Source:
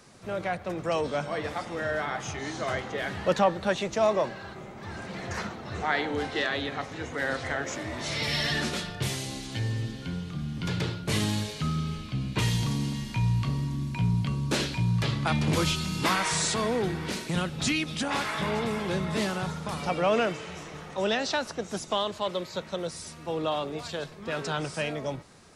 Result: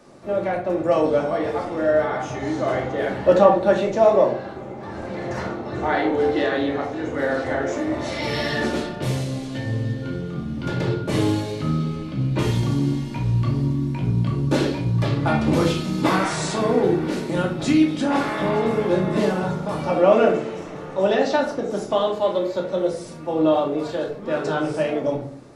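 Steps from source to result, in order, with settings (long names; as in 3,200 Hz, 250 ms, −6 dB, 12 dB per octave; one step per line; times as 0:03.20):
parametric band 450 Hz +13.5 dB 2.8 octaves
rectangular room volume 500 cubic metres, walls furnished, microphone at 2.5 metres
level −6 dB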